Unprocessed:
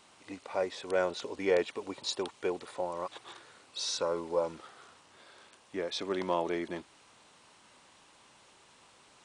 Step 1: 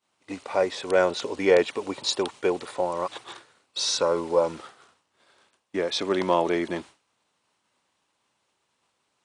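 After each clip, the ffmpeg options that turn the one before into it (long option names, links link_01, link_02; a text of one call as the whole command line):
ffmpeg -i in.wav -af "agate=range=-33dB:threshold=-46dB:ratio=3:detection=peak,highpass=51,volume=8.5dB" out.wav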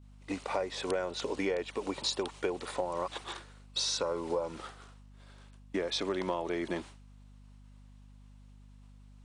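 ffmpeg -i in.wav -af "acompressor=threshold=-29dB:ratio=10,aeval=exprs='val(0)+0.00224*(sin(2*PI*50*n/s)+sin(2*PI*2*50*n/s)/2+sin(2*PI*3*50*n/s)/3+sin(2*PI*4*50*n/s)/4+sin(2*PI*5*50*n/s)/5)':channel_layout=same" out.wav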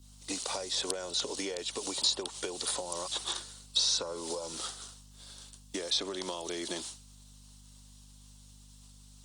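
ffmpeg -i in.wav -filter_complex "[0:a]acrossover=split=240|2600[link_01][link_02][link_03];[link_01]acompressor=threshold=-53dB:ratio=4[link_04];[link_02]acompressor=threshold=-36dB:ratio=4[link_05];[link_03]acompressor=threshold=-49dB:ratio=4[link_06];[link_04][link_05][link_06]amix=inputs=3:normalize=0,aexciter=amount=8.2:drive=3.7:freq=3300" -ar 48000 -c:a libopus -b:a 48k out.opus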